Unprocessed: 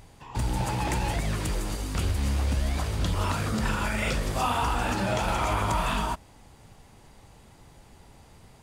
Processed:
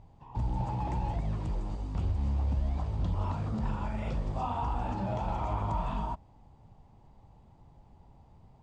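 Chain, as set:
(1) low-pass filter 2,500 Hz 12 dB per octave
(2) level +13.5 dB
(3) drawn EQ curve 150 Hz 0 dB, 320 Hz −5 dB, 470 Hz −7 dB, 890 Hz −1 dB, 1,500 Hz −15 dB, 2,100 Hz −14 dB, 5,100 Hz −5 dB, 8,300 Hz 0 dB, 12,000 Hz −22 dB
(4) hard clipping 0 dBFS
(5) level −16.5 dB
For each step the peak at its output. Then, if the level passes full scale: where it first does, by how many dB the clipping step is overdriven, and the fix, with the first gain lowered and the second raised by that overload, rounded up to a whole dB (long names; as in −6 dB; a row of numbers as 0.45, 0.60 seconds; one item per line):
−14.5, −1.0, −3.5, −3.5, −20.0 dBFS
no step passes full scale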